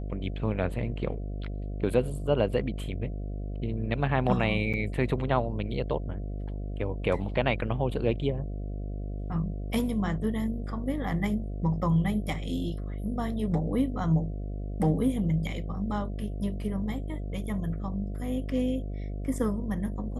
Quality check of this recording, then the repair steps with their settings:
mains buzz 50 Hz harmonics 14 −34 dBFS
0:04.73–0:04.74: drop-out 7.2 ms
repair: hum removal 50 Hz, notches 14
repair the gap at 0:04.73, 7.2 ms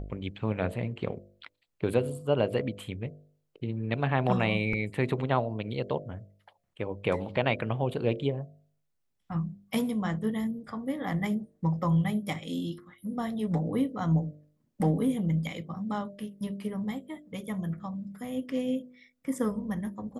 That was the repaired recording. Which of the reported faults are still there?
none of them is left

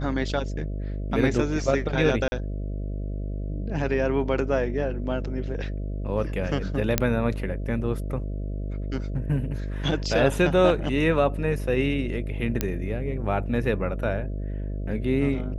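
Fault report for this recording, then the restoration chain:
mains buzz 50 Hz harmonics 13 −30 dBFS
0:02.28–0:02.32: drop-out 40 ms
0:06.98: click −4 dBFS
0:12.61: click −8 dBFS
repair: click removal
hum removal 50 Hz, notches 13
repair the gap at 0:02.28, 40 ms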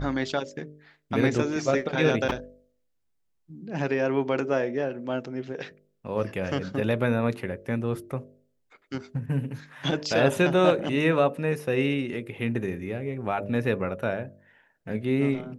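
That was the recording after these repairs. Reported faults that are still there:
none of them is left

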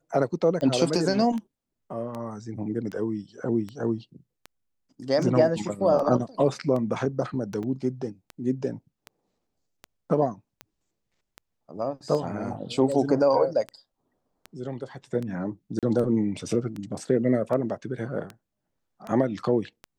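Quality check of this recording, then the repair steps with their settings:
scratch tick 78 rpm −22 dBFS
0:07.63–0:07.64: drop-out 5.4 ms
0:15.79–0:15.83: drop-out 37 ms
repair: click removal
repair the gap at 0:07.63, 5.4 ms
repair the gap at 0:15.79, 37 ms

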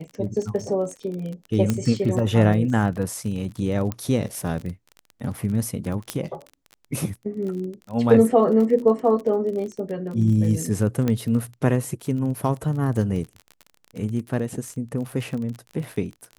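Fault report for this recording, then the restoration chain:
surface crackle 33 per second −30 dBFS
0:01.70: click −9 dBFS
0:03.92: click −14 dBFS
0:06.10: click −10 dBFS
0:11.08: click −11 dBFS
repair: click removal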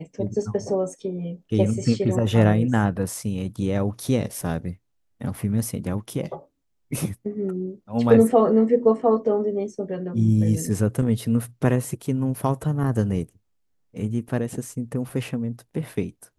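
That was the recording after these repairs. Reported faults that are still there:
0:06.10: click

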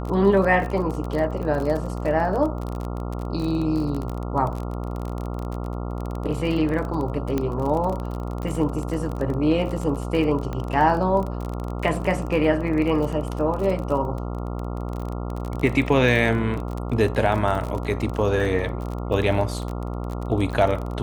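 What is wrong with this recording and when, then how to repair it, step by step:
mains buzz 60 Hz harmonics 23 −29 dBFS
surface crackle 29 per second −27 dBFS
0:07.38: click −12 dBFS
0:10.53: click −18 dBFS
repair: click removal
hum removal 60 Hz, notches 23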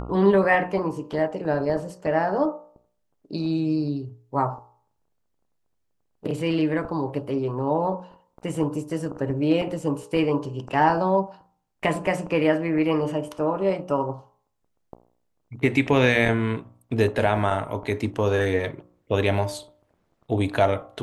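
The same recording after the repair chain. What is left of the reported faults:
none of them is left

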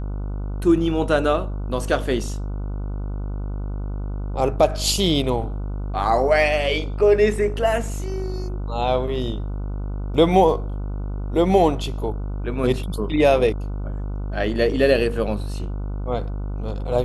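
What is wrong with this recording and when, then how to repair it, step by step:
mains buzz 50 Hz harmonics 30 −27 dBFS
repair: hum removal 50 Hz, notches 30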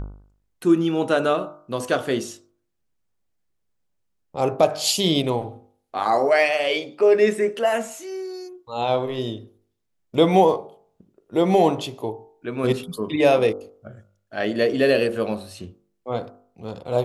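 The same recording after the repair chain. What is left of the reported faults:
none of them is left

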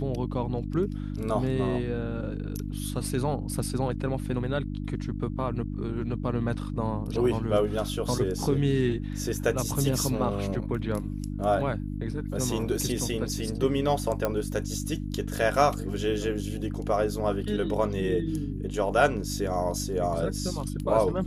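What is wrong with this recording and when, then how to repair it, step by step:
mains hum 50 Hz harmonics 6 −33 dBFS
0:14.25: click −13 dBFS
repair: click removal
hum removal 50 Hz, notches 6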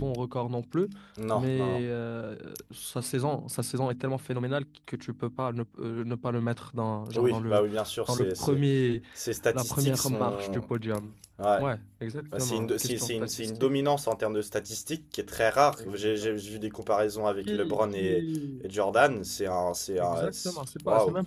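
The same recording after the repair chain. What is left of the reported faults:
none of them is left

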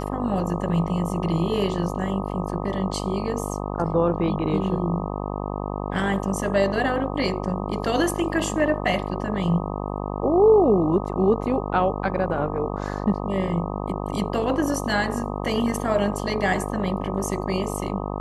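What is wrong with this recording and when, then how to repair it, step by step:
mains buzz 50 Hz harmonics 25 −29 dBFS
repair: hum removal 50 Hz, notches 25

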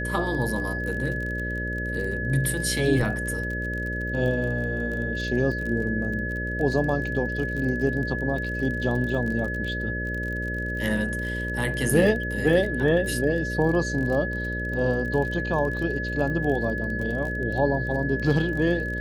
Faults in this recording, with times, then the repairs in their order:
mains buzz 60 Hz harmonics 10 −31 dBFS
surface crackle 29 per second −31 dBFS
whistle 1,700 Hz −30 dBFS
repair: click removal
hum removal 60 Hz, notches 10
notch filter 1,700 Hz, Q 30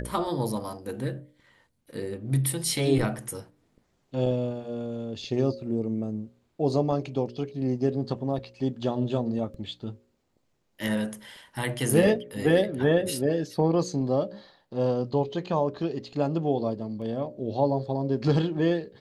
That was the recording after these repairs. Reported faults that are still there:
none of them is left

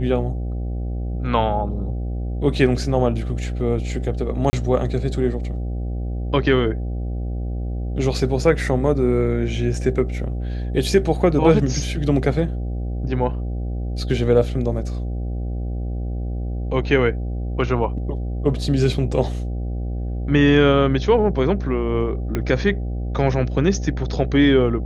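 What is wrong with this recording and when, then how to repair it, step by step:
mains buzz 60 Hz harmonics 13 −25 dBFS
0:04.50–0:04.53: drop-out 30 ms
0:22.35: click −10 dBFS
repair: click removal
hum removal 60 Hz, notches 13
repair the gap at 0:04.50, 30 ms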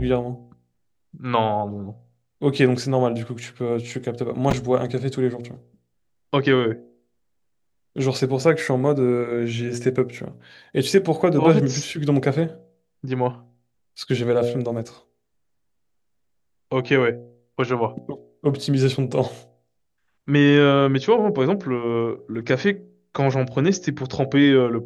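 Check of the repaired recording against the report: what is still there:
0:22.35: click

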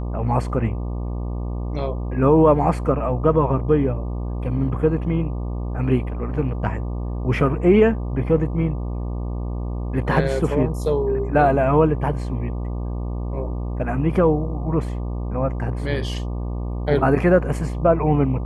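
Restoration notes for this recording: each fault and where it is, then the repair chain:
mains buzz 60 Hz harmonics 20 −26 dBFS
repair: hum removal 60 Hz, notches 20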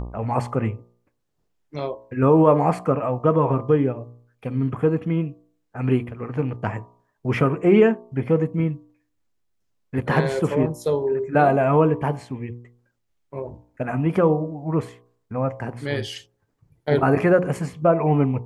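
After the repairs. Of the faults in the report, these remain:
none of them is left

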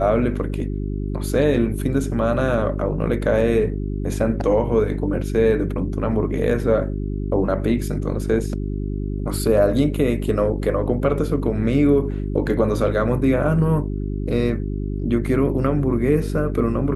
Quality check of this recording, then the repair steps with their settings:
mains hum 50 Hz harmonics 8 −25 dBFS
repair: hum removal 50 Hz, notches 8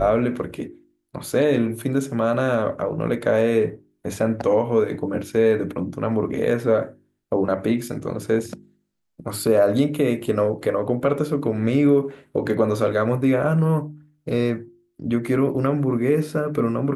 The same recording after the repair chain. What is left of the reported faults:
none of them is left

